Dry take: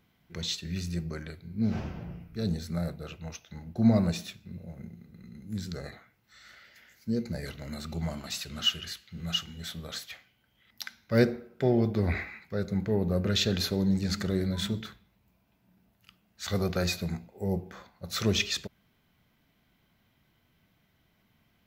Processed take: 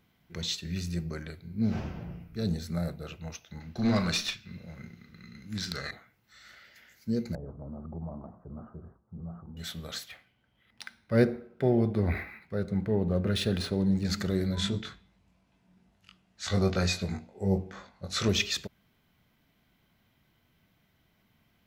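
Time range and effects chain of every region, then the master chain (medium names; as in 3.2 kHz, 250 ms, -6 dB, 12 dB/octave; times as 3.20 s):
3.60–5.91 s: high-order bell 2.6 kHz +12 dB 2.8 oct + valve stage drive 19 dB, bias 0.45 + doubling 38 ms -11 dB
7.35–9.57 s: steep low-pass 1.1 kHz 48 dB/octave + compression 2:1, threshold -38 dBFS
10.08–14.05 s: treble shelf 2.3 kHz -5 dB + decimation joined by straight lines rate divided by 3×
14.55–18.29 s: low-pass 9.5 kHz 24 dB/octave + doubling 21 ms -4 dB
whole clip: none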